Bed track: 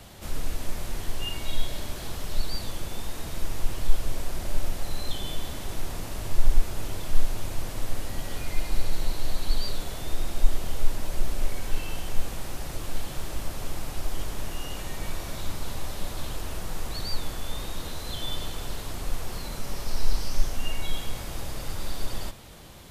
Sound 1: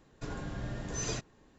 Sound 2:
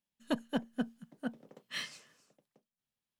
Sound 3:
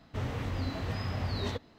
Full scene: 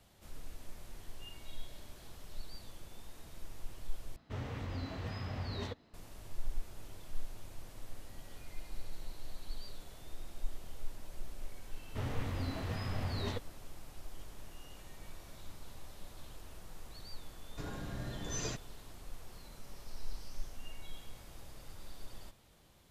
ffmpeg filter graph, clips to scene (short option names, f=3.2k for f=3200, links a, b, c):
-filter_complex "[3:a]asplit=2[a][b];[0:a]volume=-17.5dB,asplit=2[c][d];[c]atrim=end=4.164[e];[a]atrim=end=1.78,asetpts=PTS-STARTPTS,volume=-6.5dB[f];[d]atrim=start=5.936[g];[b]atrim=end=1.78,asetpts=PTS-STARTPTS,volume=-4dB,afade=t=in:d=0.004:c=hsin,afade=t=out:st=1.776:d=0.004:c=hsin,adelay=11810[h];[1:a]atrim=end=1.58,asetpts=PTS-STARTPTS,volume=-3.5dB,afade=t=in:d=0.004:c=hsin,afade=t=out:st=1.576:d=0.004:c=hsin,adelay=17360[i];[e][f]acrossfade=d=0.004:c1=hsin:c2=hsin[j];[j][g]acrossfade=d=0.004:c1=hsin:c2=hsin[k];[k][h][i]amix=inputs=3:normalize=0"